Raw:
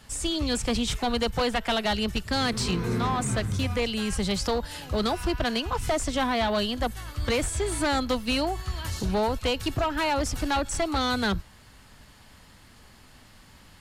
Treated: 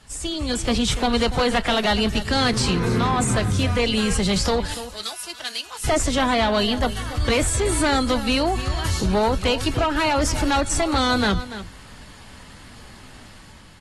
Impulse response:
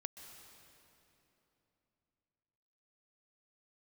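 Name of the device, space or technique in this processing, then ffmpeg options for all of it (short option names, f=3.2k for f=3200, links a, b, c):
low-bitrate web radio: -filter_complex "[0:a]asettb=1/sr,asplit=3[a][b][c];[a]atrim=end=4.744[d];[b]atrim=start=4.74:end=5.84,asetpts=PTS-STARTPTS,afade=t=in:d=0.004:c=qsin,afade=t=out:st=1.096:d=0.004:c=qsin,aderivative[e];[c]atrim=start=5.836[f];[d][e]acrossfade=d=0.004:c1=hsin:c2=qsin[g];[g][f]acrossfade=d=0.004:c1=qsin:c2=hsin,aecho=1:1:289:0.141,dynaudnorm=f=180:g=9:m=8dB,alimiter=limit=-14.5dB:level=0:latency=1:release=15" -ar 32000 -c:a aac -b:a 32k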